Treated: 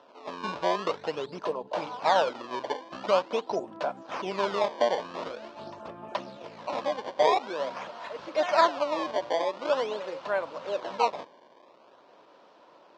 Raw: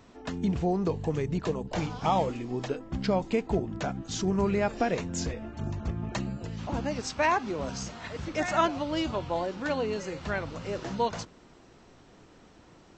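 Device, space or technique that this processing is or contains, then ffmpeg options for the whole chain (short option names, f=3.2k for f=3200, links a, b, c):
circuit-bent sampling toy: -af "acrusher=samples=19:mix=1:aa=0.000001:lfo=1:lforange=30.4:lforate=0.46,highpass=440,equalizer=f=580:t=q:w=4:g=9,equalizer=f=1k:t=q:w=4:g=8,equalizer=f=2k:t=q:w=4:g=-5,lowpass=f=5k:w=0.5412,lowpass=f=5k:w=1.3066"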